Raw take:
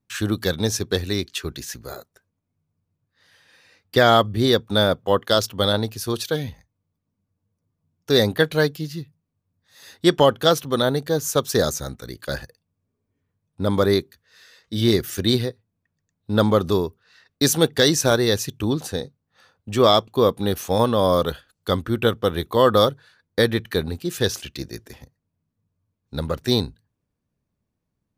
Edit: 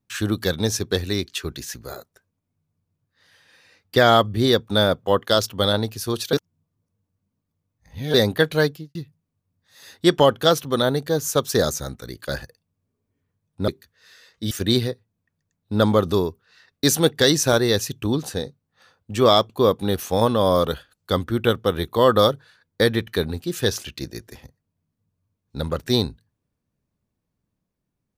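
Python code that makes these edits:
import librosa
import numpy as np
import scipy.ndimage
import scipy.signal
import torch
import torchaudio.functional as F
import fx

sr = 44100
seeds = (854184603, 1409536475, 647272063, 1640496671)

y = fx.studio_fade_out(x, sr, start_s=8.67, length_s=0.28)
y = fx.edit(y, sr, fx.reverse_span(start_s=6.33, length_s=1.81),
    fx.cut(start_s=13.68, length_s=0.3),
    fx.cut(start_s=14.81, length_s=0.28), tone=tone)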